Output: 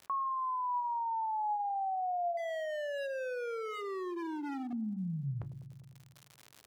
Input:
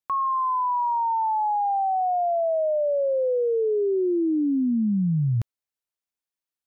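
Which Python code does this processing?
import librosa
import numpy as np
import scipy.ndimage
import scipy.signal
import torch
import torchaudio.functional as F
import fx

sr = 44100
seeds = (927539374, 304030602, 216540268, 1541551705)

y = scipy.signal.sosfilt(scipy.signal.butter(2, 1300.0, 'lowpass', fs=sr, output='sos'), x)
y = fx.comb_fb(y, sr, f0_hz=140.0, decay_s=0.37, harmonics='all', damping=0.0, mix_pct=40)
y = fx.dereverb_blind(y, sr, rt60_s=1.6)
y = fx.hum_notches(y, sr, base_hz=50, count=7)
y = fx.clip_hard(y, sr, threshold_db=-35.5, at=(2.37, 4.73))
y = fx.low_shelf(y, sr, hz=370.0, db=-8.0)
y = fx.dmg_crackle(y, sr, seeds[0], per_s=130.0, level_db=-64.0)
y = scipy.signal.sosfilt(scipy.signal.butter(2, 61.0, 'highpass', fs=sr, output='sos'), y)
y = fx.notch(y, sr, hz=420.0, q=12.0)
y = fx.echo_wet_lowpass(y, sr, ms=100, feedback_pct=55, hz=660.0, wet_db=-16)
y = fx.env_flatten(y, sr, amount_pct=50)
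y = F.gain(torch.from_numpy(y), -3.5).numpy()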